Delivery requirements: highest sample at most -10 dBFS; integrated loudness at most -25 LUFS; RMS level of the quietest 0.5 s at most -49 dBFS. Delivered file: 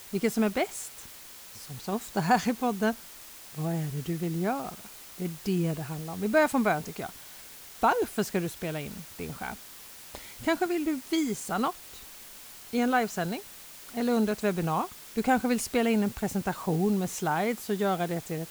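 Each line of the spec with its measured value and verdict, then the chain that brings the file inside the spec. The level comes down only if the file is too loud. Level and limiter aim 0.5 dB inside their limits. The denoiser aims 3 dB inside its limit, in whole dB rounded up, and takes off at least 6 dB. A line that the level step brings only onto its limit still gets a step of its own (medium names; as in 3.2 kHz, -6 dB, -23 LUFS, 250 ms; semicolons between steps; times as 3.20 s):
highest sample -11.0 dBFS: pass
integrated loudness -29.5 LUFS: pass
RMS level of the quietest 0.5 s -47 dBFS: fail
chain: noise reduction 6 dB, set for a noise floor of -47 dBFS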